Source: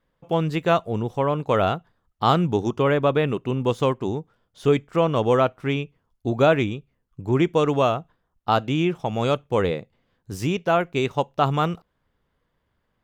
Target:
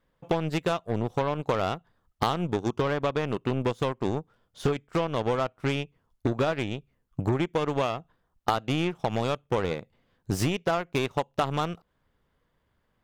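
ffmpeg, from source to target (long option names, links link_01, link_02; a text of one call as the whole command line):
ffmpeg -i in.wav -af "acompressor=threshold=-30dB:ratio=20,aeval=exprs='0.0841*(cos(1*acos(clip(val(0)/0.0841,-1,1)))-cos(1*PI/2))+0.0188*(cos(2*acos(clip(val(0)/0.0841,-1,1)))-cos(2*PI/2))+0.00668*(cos(4*acos(clip(val(0)/0.0841,-1,1)))-cos(4*PI/2))+0.0075*(cos(7*acos(clip(val(0)/0.0841,-1,1)))-cos(7*PI/2))':channel_layout=same,volume=8.5dB" out.wav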